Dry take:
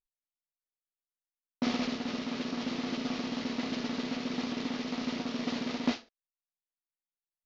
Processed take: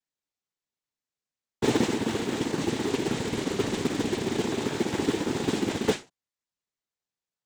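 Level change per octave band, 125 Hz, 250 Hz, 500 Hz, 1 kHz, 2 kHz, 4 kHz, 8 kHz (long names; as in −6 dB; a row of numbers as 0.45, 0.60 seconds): +12.5 dB, +4.5 dB, +12.0 dB, +6.0 dB, +5.5 dB, +4.0 dB, can't be measured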